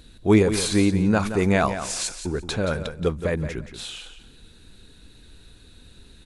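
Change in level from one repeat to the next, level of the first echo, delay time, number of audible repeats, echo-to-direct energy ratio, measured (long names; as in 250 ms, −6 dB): −14.5 dB, −10.5 dB, 174 ms, 2, −10.5 dB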